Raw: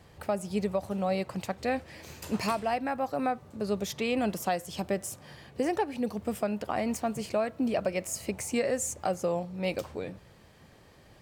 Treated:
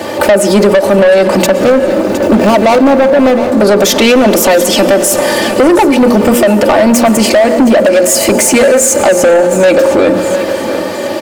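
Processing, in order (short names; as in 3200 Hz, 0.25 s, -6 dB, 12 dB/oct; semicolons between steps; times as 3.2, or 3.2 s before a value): 1.46–3.52 median filter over 41 samples; Bessel high-pass 180 Hz, order 8; bell 460 Hz +10 dB 1.4 oct; notches 60/120/180/240/300/360/420/480/540 Hz; comb 3.4 ms, depth 81%; compressor 5:1, threshold -24 dBFS, peak gain reduction 10.5 dB; soft clip -29.5 dBFS, distortion -8 dB; feedback echo 0.713 s, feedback 35%, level -17 dB; reverb RT60 2.9 s, pre-delay 0.101 s, DRR 14.5 dB; maximiser +35 dB; gain -1 dB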